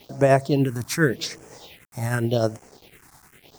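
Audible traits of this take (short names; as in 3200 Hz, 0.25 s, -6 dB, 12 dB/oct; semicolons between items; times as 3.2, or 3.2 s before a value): tremolo triangle 9.9 Hz, depth 45%; a quantiser's noise floor 8-bit, dither none; phasing stages 4, 0.87 Hz, lowest notch 460–3700 Hz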